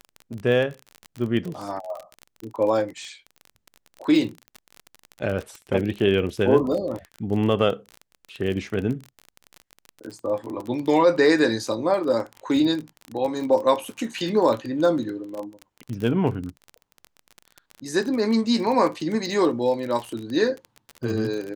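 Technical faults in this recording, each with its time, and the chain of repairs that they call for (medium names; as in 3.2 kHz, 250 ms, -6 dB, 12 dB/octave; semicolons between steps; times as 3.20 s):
crackle 31 per s -28 dBFS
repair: de-click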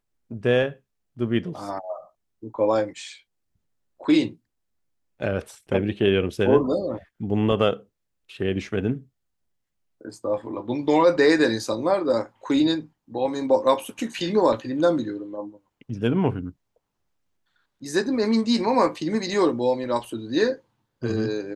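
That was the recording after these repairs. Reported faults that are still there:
nothing left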